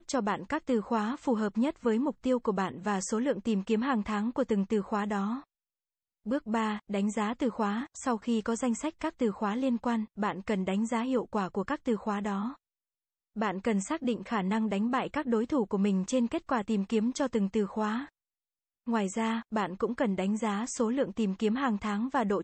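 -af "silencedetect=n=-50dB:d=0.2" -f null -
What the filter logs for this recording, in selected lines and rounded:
silence_start: 5.44
silence_end: 6.26 | silence_duration: 0.82
silence_start: 12.56
silence_end: 13.36 | silence_duration: 0.80
silence_start: 18.09
silence_end: 18.87 | silence_duration: 0.78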